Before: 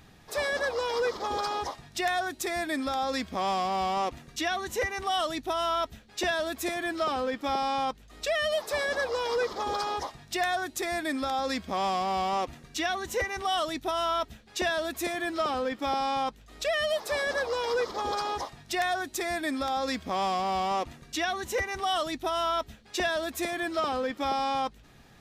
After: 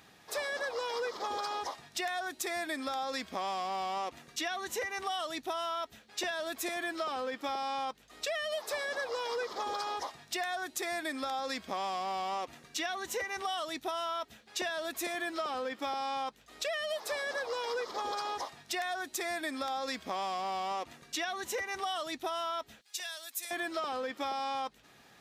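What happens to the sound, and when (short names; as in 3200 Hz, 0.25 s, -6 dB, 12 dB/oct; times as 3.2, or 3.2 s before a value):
22.81–23.51 differentiator
whole clip: HPF 450 Hz 6 dB/oct; compressor, threshold -32 dBFS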